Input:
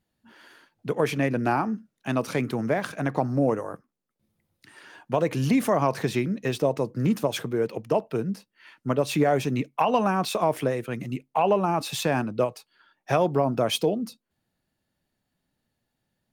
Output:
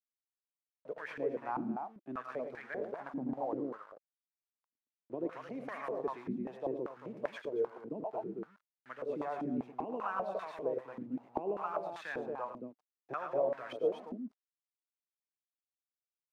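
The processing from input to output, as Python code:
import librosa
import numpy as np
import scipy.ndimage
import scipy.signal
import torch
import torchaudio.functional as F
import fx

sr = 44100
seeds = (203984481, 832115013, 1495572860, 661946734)

y = np.where(np.abs(x) >= 10.0 ** (-35.5 / 20.0), x, 0.0)
y = fx.echo_multitap(y, sr, ms=(85, 110, 226), db=(-9.5, -6.5, -4.5))
y = fx.filter_held_bandpass(y, sr, hz=5.1, low_hz=260.0, high_hz=1700.0)
y = y * librosa.db_to_amplitude(-6.0)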